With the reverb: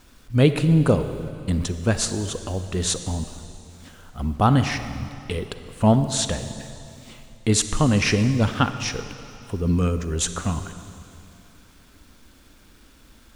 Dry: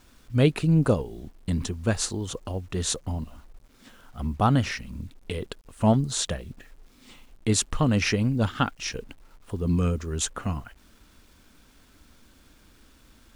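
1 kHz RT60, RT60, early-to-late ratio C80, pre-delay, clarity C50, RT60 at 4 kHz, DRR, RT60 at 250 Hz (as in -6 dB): 2.7 s, 2.7 s, 10.5 dB, 36 ms, 10.0 dB, 2.6 s, 9.5 dB, 2.8 s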